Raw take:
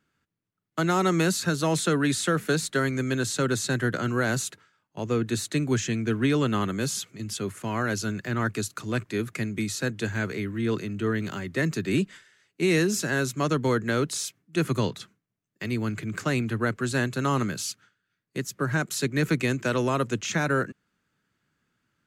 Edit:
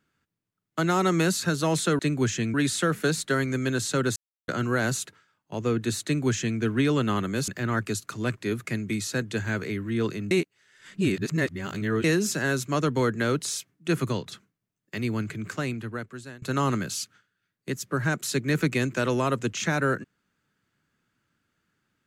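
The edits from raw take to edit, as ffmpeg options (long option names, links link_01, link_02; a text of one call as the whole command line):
ffmpeg -i in.wav -filter_complex "[0:a]asplit=10[link_01][link_02][link_03][link_04][link_05][link_06][link_07][link_08][link_09][link_10];[link_01]atrim=end=1.992[link_11];[link_02]atrim=start=5.488:end=6.042[link_12];[link_03]atrim=start=1.988:end=3.61,asetpts=PTS-STARTPTS,afade=type=out:start_time=1.618:duration=0.004:curve=hsin[link_13];[link_04]atrim=start=3.61:end=3.93,asetpts=PTS-STARTPTS,volume=0[link_14];[link_05]atrim=start=3.93:end=6.932,asetpts=PTS-STARTPTS,afade=type=in:duration=0.004:curve=hsin[link_15];[link_06]atrim=start=8.158:end=10.992[link_16];[link_07]atrim=start=10.988:end=12.722,asetpts=PTS-STARTPTS,areverse[link_17];[link_08]atrim=start=12.718:end=14.94,asetpts=PTS-STARTPTS,afade=type=out:start_time=1.942:duration=0.28:silence=0.473151[link_18];[link_09]atrim=start=14.94:end=17.1,asetpts=PTS-STARTPTS,afade=type=in:duration=0.004:curve=hsin:silence=0.473151,afade=type=out:start_time=0.89:duration=1.27:silence=0.0630957[link_19];[link_10]atrim=start=17.1,asetpts=PTS-STARTPTS,afade=type=in:duration=0.004:curve=hsin:silence=0.0630957[link_20];[link_11][link_12]acrossfade=duration=0.004:curve1=hsin:curve2=hsin[link_21];[link_13][link_14][link_15]concat=n=3:v=0:a=1[link_22];[link_21][link_22]acrossfade=duration=0.004:curve1=hsin:curve2=hsin[link_23];[link_23][link_16]acrossfade=duration=0.004:curve1=hsin:curve2=hsin[link_24];[link_24][link_17]acrossfade=duration=0.004:curve1=hsin:curve2=hsin[link_25];[link_18][link_19][link_20]concat=n=3:v=0:a=1[link_26];[link_25][link_26]acrossfade=duration=0.004:curve1=hsin:curve2=hsin" out.wav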